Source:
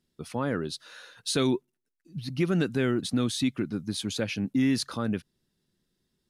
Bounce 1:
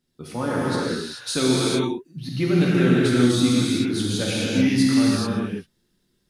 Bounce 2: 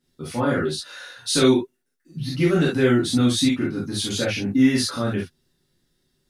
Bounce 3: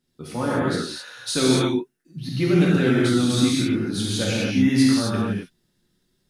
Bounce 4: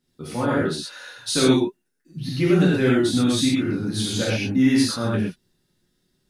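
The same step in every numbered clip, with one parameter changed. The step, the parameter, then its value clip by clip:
non-linear reverb, gate: 460, 90, 290, 150 ms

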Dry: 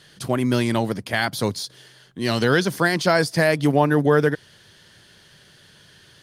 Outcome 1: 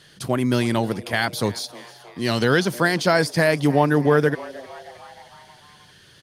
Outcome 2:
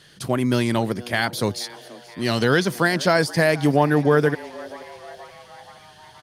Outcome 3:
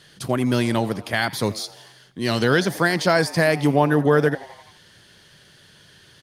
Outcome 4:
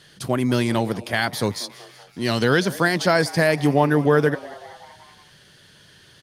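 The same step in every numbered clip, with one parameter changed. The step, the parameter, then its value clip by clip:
frequency-shifting echo, time: 312, 478, 85, 189 ms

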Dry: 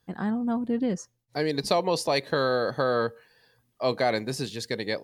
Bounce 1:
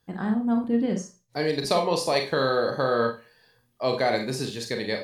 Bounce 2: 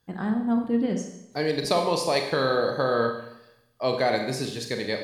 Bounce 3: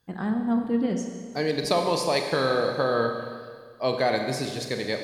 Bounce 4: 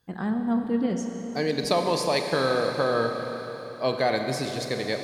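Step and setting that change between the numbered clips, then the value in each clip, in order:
Schroeder reverb, RT60: 0.3, 0.85, 1.9, 4.2 s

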